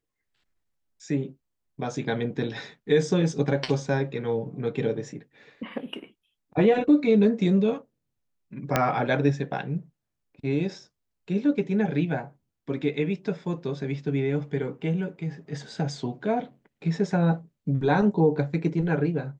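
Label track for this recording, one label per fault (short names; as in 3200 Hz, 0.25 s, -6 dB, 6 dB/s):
8.760000	8.760000	pop -6 dBFS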